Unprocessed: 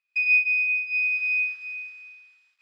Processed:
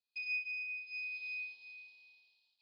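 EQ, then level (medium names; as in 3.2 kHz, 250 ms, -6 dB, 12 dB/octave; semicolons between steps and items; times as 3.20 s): FFT filter 900 Hz 0 dB, 1.3 kHz -27 dB, 2.1 kHz -19 dB, 3 kHz -1 dB, 4.3 kHz +13 dB, 6.3 kHz -14 dB; -7.5 dB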